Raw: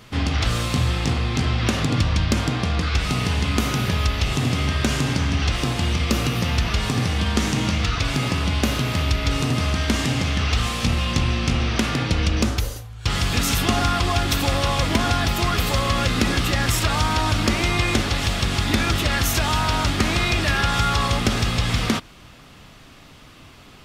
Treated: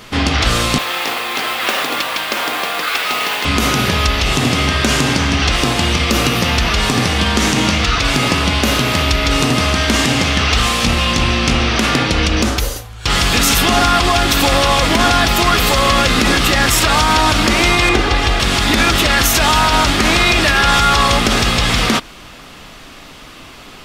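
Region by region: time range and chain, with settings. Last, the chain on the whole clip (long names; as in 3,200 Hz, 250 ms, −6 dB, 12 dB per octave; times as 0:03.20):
0:00.78–0:03.45: band-pass filter 570–4,100 Hz + noise that follows the level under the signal 12 dB
0:17.89–0:18.40: low-pass filter 2,400 Hz 6 dB per octave + comb filter 2.5 ms, depth 48% + hard clipping −12 dBFS
whole clip: parametric band 100 Hz −9.5 dB 1.8 octaves; boost into a limiter +12 dB; level −1 dB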